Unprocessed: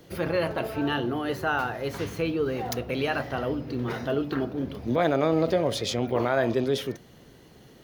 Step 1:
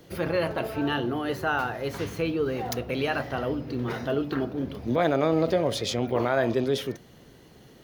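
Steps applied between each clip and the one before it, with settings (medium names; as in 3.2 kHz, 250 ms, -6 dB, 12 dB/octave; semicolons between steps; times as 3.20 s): no audible change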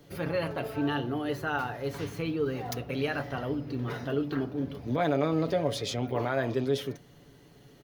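bass shelf 140 Hz +3 dB; comb 7 ms, depth 45%; trim -5 dB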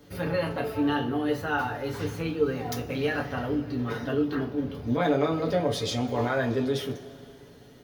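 reverberation, pre-delay 3 ms, DRR 1 dB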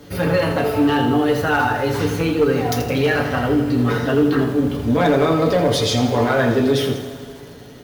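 in parallel at +1.5 dB: peak limiter -22 dBFS, peak gain reduction 9 dB; on the sum: one-sided clip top -16 dBFS; bit-crushed delay 82 ms, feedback 55%, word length 7-bit, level -9 dB; trim +4.5 dB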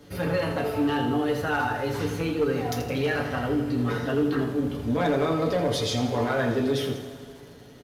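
resampled via 32 kHz; trim -8 dB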